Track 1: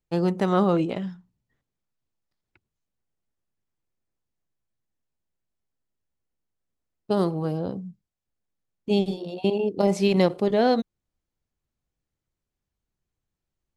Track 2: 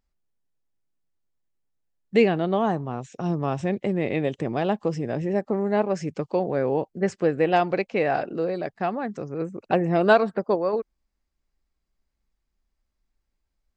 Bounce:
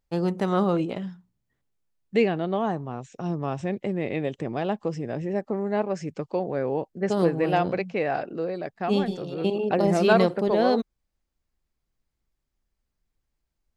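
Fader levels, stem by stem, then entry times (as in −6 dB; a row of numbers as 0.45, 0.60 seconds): −2.0, −3.0 decibels; 0.00, 0.00 seconds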